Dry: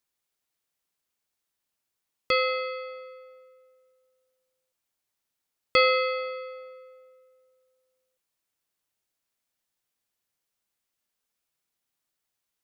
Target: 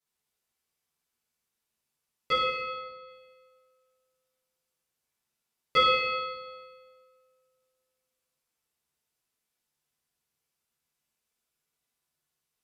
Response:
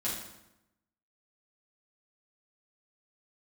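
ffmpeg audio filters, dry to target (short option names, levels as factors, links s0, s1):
-filter_complex "[0:a]asplit=3[s0][s1][s2];[s0]afade=t=out:st=2.34:d=0.02[s3];[s1]lowpass=f=2900:p=1,afade=t=in:st=2.34:d=0.02,afade=t=out:st=3.06:d=0.02[s4];[s2]afade=t=in:st=3.06:d=0.02[s5];[s3][s4][s5]amix=inputs=3:normalize=0[s6];[1:a]atrim=start_sample=2205,asetrate=30429,aresample=44100[s7];[s6][s7]afir=irnorm=-1:irlink=0,volume=0.447"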